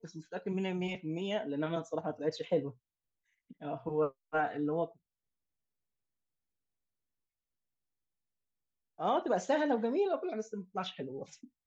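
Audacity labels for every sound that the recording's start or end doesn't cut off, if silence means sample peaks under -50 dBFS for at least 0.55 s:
3.510000	4.920000	sound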